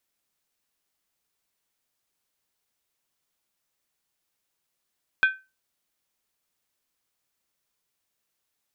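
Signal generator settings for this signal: skin hit, lowest mode 1540 Hz, decay 0.26 s, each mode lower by 9 dB, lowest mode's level -12.5 dB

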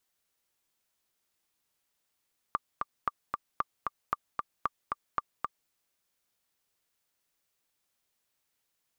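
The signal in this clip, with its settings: metronome 228 bpm, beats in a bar 2, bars 6, 1180 Hz, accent 3 dB -14.5 dBFS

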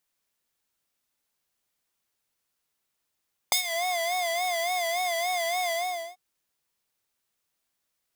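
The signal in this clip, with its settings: synth patch with vibrato F5, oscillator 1 square, interval +7 st, oscillator 2 level -15 dB, sub -22.5 dB, noise -14.5 dB, filter highpass, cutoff 420 Hz, Q 0.82, filter envelope 3.5 oct, filter decay 0.23 s, filter sustain 30%, attack 2.1 ms, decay 0.10 s, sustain -14.5 dB, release 0.46 s, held 2.18 s, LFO 3.5 Hz, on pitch 90 cents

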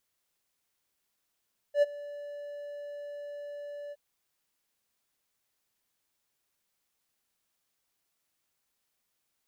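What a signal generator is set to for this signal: ADSR triangle 580 Hz, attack 83 ms, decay 25 ms, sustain -20.5 dB, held 2.18 s, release 36 ms -16 dBFS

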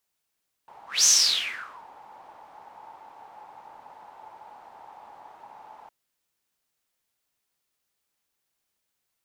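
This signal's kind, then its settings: whoosh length 5.21 s, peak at 0.37, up 0.20 s, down 0.86 s, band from 860 Hz, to 6200 Hz, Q 8.7, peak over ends 30.5 dB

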